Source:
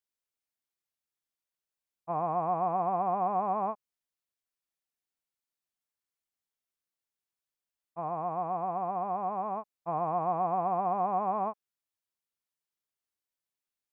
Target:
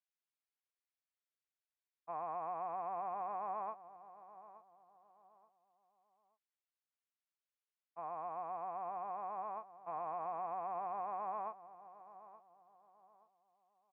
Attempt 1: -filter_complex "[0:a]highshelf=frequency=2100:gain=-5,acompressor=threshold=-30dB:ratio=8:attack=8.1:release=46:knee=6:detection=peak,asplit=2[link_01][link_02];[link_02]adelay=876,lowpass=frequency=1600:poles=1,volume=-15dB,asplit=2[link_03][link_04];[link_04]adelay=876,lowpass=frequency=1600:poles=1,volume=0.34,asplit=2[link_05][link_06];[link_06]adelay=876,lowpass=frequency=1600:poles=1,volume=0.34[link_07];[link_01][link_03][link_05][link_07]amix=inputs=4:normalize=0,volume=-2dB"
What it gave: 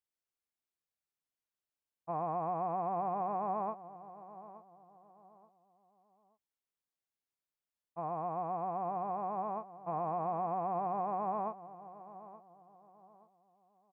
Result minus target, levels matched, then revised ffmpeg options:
2,000 Hz band −5.0 dB
-filter_complex "[0:a]highshelf=frequency=2100:gain=-5,acompressor=threshold=-30dB:ratio=8:attack=8.1:release=46:knee=6:detection=peak,bandpass=frequency=2200:width_type=q:width=0.66:csg=0,asplit=2[link_01][link_02];[link_02]adelay=876,lowpass=frequency=1600:poles=1,volume=-15dB,asplit=2[link_03][link_04];[link_04]adelay=876,lowpass=frequency=1600:poles=1,volume=0.34,asplit=2[link_05][link_06];[link_06]adelay=876,lowpass=frequency=1600:poles=1,volume=0.34[link_07];[link_01][link_03][link_05][link_07]amix=inputs=4:normalize=0,volume=-2dB"

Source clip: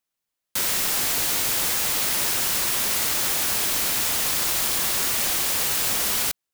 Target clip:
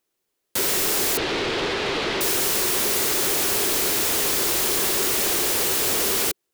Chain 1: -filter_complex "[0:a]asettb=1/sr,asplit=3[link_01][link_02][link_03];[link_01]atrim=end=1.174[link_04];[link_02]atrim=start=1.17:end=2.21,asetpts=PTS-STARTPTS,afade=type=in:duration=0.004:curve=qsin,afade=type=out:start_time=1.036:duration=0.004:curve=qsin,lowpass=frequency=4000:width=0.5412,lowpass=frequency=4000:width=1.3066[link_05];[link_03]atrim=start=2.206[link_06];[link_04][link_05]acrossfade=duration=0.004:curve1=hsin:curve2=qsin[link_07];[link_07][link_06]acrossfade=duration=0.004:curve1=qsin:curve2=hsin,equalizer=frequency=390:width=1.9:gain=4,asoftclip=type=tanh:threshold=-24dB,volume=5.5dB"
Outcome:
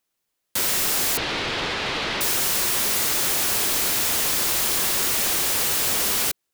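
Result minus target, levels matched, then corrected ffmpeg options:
500 Hz band −6.0 dB
-filter_complex "[0:a]asettb=1/sr,asplit=3[link_01][link_02][link_03];[link_01]atrim=end=1.174[link_04];[link_02]atrim=start=1.17:end=2.21,asetpts=PTS-STARTPTS,afade=type=in:duration=0.004:curve=qsin,afade=type=out:start_time=1.036:duration=0.004:curve=qsin,lowpass=frequency=4000:width=0.5412,lowpass=frequency=4000:width=1.3066[link_05];[link_03]atrim=start=2.206[link_06];[link_04][link_05]acrossfade=duration=0.004:curve1=hsin:curve2=qsin[link_07];[link_07][link_06]acrossfade=duration=0.004:curve1=qsin:curve2=hsin,equalizer=frequency=390:width=1.9:gain=14,asoftclip=type=tanh:threshold=-24dB,volume=5.5dB"

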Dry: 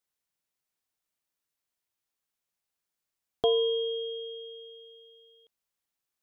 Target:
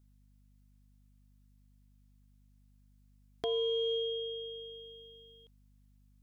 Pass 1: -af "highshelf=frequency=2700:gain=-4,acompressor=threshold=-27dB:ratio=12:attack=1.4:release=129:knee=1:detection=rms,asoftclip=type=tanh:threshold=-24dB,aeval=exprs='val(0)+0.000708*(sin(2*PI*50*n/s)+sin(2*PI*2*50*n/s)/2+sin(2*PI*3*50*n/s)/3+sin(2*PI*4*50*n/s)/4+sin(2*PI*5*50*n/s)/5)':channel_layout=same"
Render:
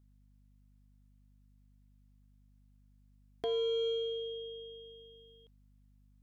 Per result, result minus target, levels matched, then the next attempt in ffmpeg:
soft clipping: distortion +12 dB; 4,000 Hz band −3.0 dB
-af "highshelf=frequency=2700:gain=-4,acompressor=threshold=-27dB:ratio=12:attack=1.4:release=129:knee=1:detection=rms,asoftclip=type=tanh:threshold=-17dB,aeval=exprs='val(0)+0.000708*(sin(2*PI*50*n/s)+sin(2*PI*2*50*n/s)/2+sin(2*PI*3*50*n/s)/3+sin(2*PI*4*50*n/s)/4+sin(2*PI*5*50*n/s)/5)':channel_layout=same"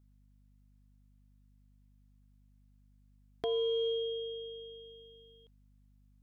4,000 Hz band −3.0 dB
-af "highshelf=frequency=2700:gain=2.5,acompressor=threshold=-27dB:ratio=12:attack=1.4:release=129:knee=1:detection=rms,asoftclip=type=tanh:threshold=-17dB,aeval=exprs='val(0)+0.000708*(sin(2*PI*50*n/s)+sin(2*PI*2*50*n/s)/2+sin(2*PI*3*50*n/s)/3+sin(2*PI*4*50*n/s)/4+sin(2*PI*5*50*n/s)/5)':channel_layout=same"

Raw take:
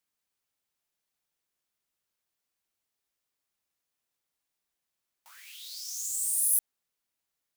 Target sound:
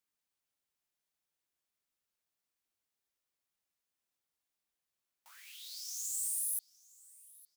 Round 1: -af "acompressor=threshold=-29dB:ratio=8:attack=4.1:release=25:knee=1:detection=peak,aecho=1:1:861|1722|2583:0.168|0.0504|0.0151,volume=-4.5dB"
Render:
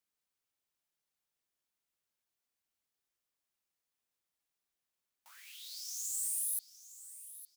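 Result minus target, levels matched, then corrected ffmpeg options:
echo-to-direct +8 dB
-af "acompressor=threshold=-29dB:ratio=8:attack=4.1:release=25:knee=1:detection=peak,aecho=1:1:861|1722:0.0668|0.0201,volume=-4.5dB"

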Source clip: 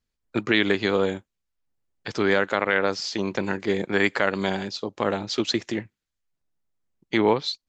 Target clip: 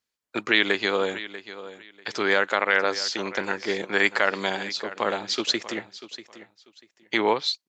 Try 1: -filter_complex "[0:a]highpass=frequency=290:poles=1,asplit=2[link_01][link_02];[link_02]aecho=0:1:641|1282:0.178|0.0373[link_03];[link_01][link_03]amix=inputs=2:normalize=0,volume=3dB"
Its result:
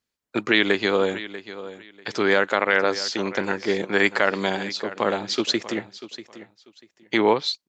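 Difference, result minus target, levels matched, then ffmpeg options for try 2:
250 Hz band +3.5 dB
-filter_complex "[0:a]highpass=frequency=730:poles=1,asplit=2[link_01][link_02];[link_02]aecho=0:1:641|1282:0.178|0.0373[link_03];[link_01][link_03]amix=inputs=2:normalize=0,volume=3dB"

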